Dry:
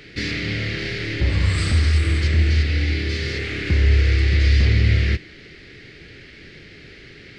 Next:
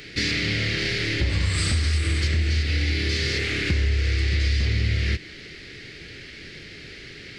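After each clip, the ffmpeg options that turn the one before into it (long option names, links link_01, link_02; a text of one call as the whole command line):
ffmpeg -i in.wav -af "highshelf=frequency=3900:gain=10,acompressor=threshold=-19dB:ratio=6" out.wav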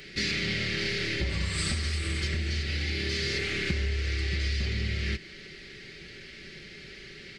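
ffmpeg -i in.wav -af "aecho=1:1:5.2:0.48,volume=-5.5dB" out.wav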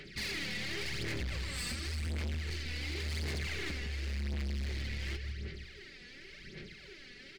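ffmpeg -i in.wav -filter_complex "[0:a]asplit=2[link_01][link_02];[link_02]adelay=158,lowpass=frequency=4100:poles=1,volume=-9dB,asplit=2[link_03][link_04];[link_04]adelay=158,lowpass=frequency=4100:poles=1,volume=0.51,asplit=2[link_05][link_06];[link_06]adelay=158,lowpass=frequency=4100:poles=1,volume=0.51,asplit=2[link_07][link_08];[link_08]adelay=158,lowpass=frequency=4100:poles=1,volume=0.51,asplit=2[link_09][link_10];[link_10]adelay=158,lowpass=frequency=4100:poles=1,volume=0.51,asplit=2[link_11][link_12];[link_12]adelay=158,lowpass=frequency=4100:poles=1,volume=0.51[link_13];[link_01][link_03][link_05][link_07][link_09][link_11][link_13]amix=inputs=7:normalize=0,aphaser=in_gain=1:out_gain=1:delay=4.1:decay=0.64:speed=0.91:type=sinusoidal,asoftclip=type=hard:threshold=-25.5dB,volume=-8.5dB" out.wav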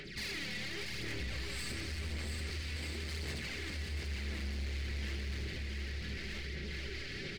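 ffmpeg -i in.wav -filter_complex "[0:a]asplit=2[link_01][link_02];[link_02]aecho=0:1:690|1242|1684|2037|2320:0.631|0.398|0.251|0.158|0.1[link_03];[link_01][link_03]amix=inputs=2:normalize=0,alimiter=level_in=16.5dB:limit=-24dB:level=0:latency=1:release=105,volume=-16.5dB,dynaudnorm=framelen=710:gausssize=3:maxgain=4dB,volume=4dB" out.wav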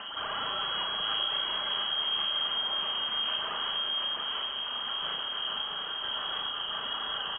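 ffmpeg -i in.wav -filter_complex "[0:a]acrusher=bits=8:mix=0:aa=0.000001,lowpass=frequency=2800:width_type=q:width=0.5098,lowpass=frequency=2800:width_type=q:width=0.6013,lowpass=frequency=2800:width_type=q:width=0.9,lowpass=frequency=2800:width_type=q:width=2.563,afreqshift=-3300,asplit=2[link_01][link_02];[link_02]adelay=37,volume=-5dB[link_03];[link_01][link_03]amix=inputs=2:normalize=0,volume=7dB" out.wav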